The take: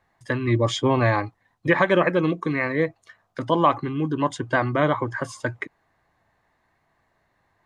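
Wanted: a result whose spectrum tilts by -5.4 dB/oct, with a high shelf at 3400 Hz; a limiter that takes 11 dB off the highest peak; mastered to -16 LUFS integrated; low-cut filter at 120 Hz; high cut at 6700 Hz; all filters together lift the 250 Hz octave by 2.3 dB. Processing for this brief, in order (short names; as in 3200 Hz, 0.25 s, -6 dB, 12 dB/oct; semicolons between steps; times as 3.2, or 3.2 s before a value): HPF 120 Hz; LPF 6700 Hz; bell 250 Hz +3.5 dB; high shelf 3400 Hz -4.5 dB; gain +11 dB; limiter -4.5 dBFS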